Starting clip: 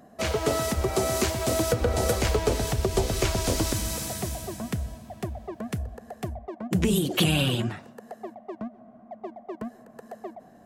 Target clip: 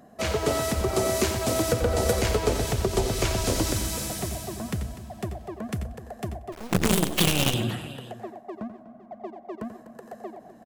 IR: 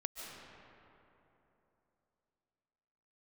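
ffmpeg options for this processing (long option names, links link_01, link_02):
-filter_complex "[0:a]asplit=2[link_01][link_02];[link_02]aecho=0:1:87|247|511:0.299|0.178|0.141[link_03];[link_01][link_03]amix=inputs=2:normalize=0,asettb=1/sr,asplit=3[link_04][link_05][link_06];[link_04]atrim=end=6.524[link_07];[link_05]atrim=start=6.52:end=7.54,asetpts=PTS-STARTPTS,afade=type=in:duration=0.004:curve=qsin,afade=type=out:start_time=1.016:duration=0.004:curve=qsin,acrusher=bits=4:dc=4:mix=0:aa=0.000001[link_08];[link_06]atrim=start=7.536[link_09];[link_07][link_08]acrossfade=duration=0.004:curve1=hsin:curve2=qsin[link_10];[link_10][link_09]acrossfade=duration=0.004:curve1=qsin:curve2=hsin,asplit=2[link_11][link_12];[link_12]aecho=0:1:97:0.15[link_13];[link_11][link_13]amix=inputs=2:normalize=0"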